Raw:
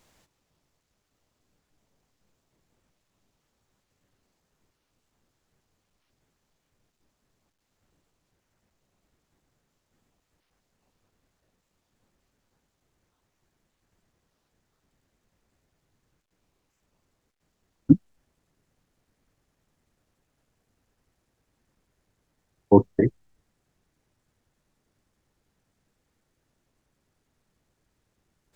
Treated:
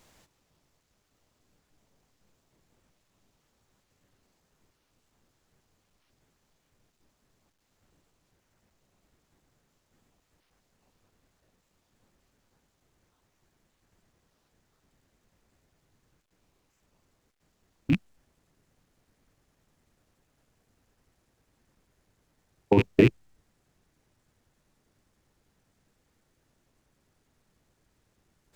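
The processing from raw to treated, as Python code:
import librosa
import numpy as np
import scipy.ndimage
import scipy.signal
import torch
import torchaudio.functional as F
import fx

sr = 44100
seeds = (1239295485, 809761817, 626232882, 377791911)

y = fx.rattle_buzz(x, sr, strikes_db=-29.0, level_db=-19.0)
y = fx.over_compress(y, sr, threshold_db=-15.0, ratio=-0.5)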